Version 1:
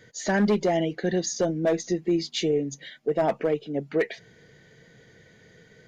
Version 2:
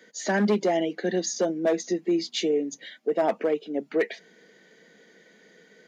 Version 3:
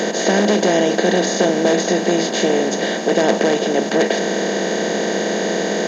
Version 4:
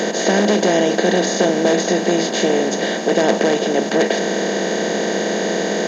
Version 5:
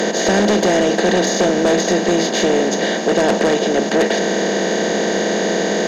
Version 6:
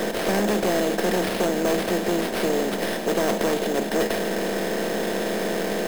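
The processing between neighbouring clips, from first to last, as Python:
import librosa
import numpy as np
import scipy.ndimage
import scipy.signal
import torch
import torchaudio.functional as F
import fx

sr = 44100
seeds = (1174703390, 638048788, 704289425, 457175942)

y1 = scipy.signal.sosfilt(scipy.signal.butter(8, 190.0, 'highpass', fs=sr, output='sos'), x)
y2 = fx.bin_compress(y1, sr, power=0.2)
y2 = fx.low_shelf(y2, sr, hz=69.0, db=9.0)
y2 = y2 * 10.0 ** (1.0 / 20.0)
y3 = y2
y4 = fx.fold_sine(y3, sr, drive_db=6, ceiling_db=-1.0)
y4 = y4 * 10.0 ** (-7.5 / 20.0)
y5 = fx.tracing_dist(y4, sr, depth_ms=0.33)
y5 = fx.sample_hold(y5, sr, seeds[0], rate_hz=7000.0, jitter_pct=0)
y5 = y5 * 10.0 ** (-7.5 / 20.0)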